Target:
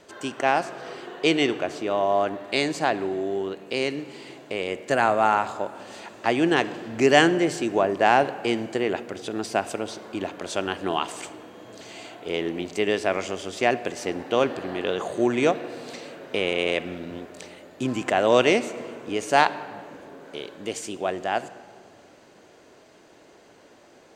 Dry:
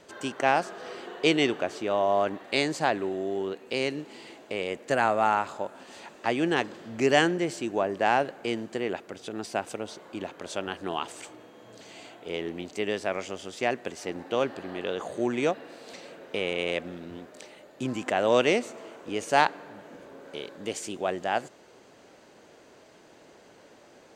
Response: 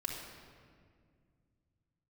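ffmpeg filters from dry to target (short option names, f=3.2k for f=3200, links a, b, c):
-filter_complex "[0:a]dynaudnorm=f=530:g=21:m=6dB,asplit=2[a][b];[1:a]atrim=start_sample=2205[c];[b][c]afir=irnorm=-1:irlink=0,volume=-12dB[d];[a][d]amix=inputs=2:normalize=0"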